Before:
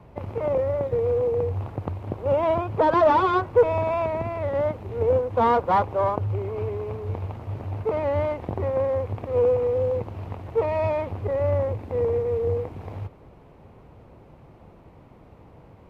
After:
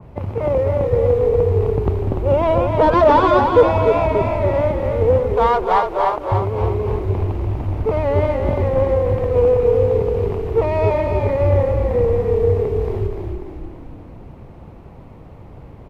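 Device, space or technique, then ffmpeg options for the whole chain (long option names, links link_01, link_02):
ducked delay: -filter_complex "[0:a]asplit=3[link_01][link_02][link_03];[link_02]adelay=245,volume=-7dB[link_04];[link_03]apad=whole_len=711837[link_05];[link_04][link_05]sidechaincompress=threshold=-22dB:ratio=8:attack=16:release=1460[link_06];[link_01][link_06]amix=inputs=2:normalize=0,asettb=1/sr,asplit=3[link_07][link_08][link_09];[link_07]atrim=end=5.344[link_10];[link_08]atrim=start=5.34:end=6.32,asetpts=PTS-STARTPTS,afade=type=in:duration=0.004:curve=qsin,afade=type=out:start_time=0.976:duration=0.004:curve=qsin,highpass=620[link_11];[link_09]atrim=start=6.316[link_12];[link_10][link_11]acrossfade=duration=0.004:curve1=hsin:curve2=qsin[link_13];[link_13][link_12]acrossfade=duration=0.004:curve1=qsin:curve2=hsin,lowshelf=frequency=250:gain=6,asplit=8[link_14][link_15][link_16][link_17][link_18][link_19][link_20][link_21];[link_15]adelay=293,afreqshift=-36,volume=-5dB[link_22];[link_16]adelay=586,afreqshift=-72,volume=-10.7dB[link_23];[link_17]adelay=879,afreqshift=-108,volume=-16.4dB[link_24];[link_18]adelay=1172,afreqshift=-144,volume=-22dB[link_25];[link_19]adelay=1465,afreqshift=-180,volume=-27.7dB[link_26];[link_20]adelay=1758,afreqshift=-216,volume=-33.4dB[link_27];[link_21]adelay=2051,afreqshift=-252,volume=-39.1dB[link_28];[link_14][link_22][link_23][link_24][link_25][link_26][link_27][link_28]amix=inputs=8:normalize=0,adynamicequalizer=threshold=0.0141:dfrequency=2400:dqfactor=0.7:tfrequency=2400:tqfactor=0.7:attack=5:release=100:ratio=0.375:range=1.5:mode=boostabove:tftype=highshelf,volume=4dB"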